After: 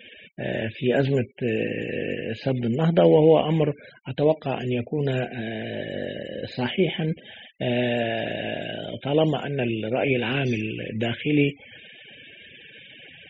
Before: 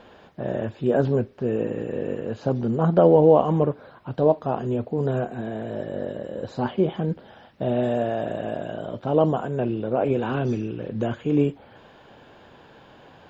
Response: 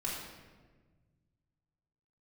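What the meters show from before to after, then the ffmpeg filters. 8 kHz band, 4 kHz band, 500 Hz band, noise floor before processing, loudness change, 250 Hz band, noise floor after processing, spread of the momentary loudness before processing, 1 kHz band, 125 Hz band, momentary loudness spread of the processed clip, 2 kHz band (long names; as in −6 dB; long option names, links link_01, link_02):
can't be measured, +13.0 dB, −1.5 dB, −51 dBFS, −0.5 dB, −0.5 dB, −49 dBFS, 13 LU, −3.5 dB, 0.0 dB, 23 LU, +9.5 dB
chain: -filter_complex "[0:a]highshelf=frequency=1600:width_type=q:width=3:gain=11,acrossover=split=3500[link_01][link_02];[link_02]acompressor=threshold=-45dB:ratio=4:attack=1:release=60[link_03];[link_01][link_03]amix=inputs=2:normalize=0,afftfilt=real='re*gte(hypot(re,im),0.0112)':imag='im*gte(hypot(re,im),0.0112)':win_size=1024:overlap=0.75"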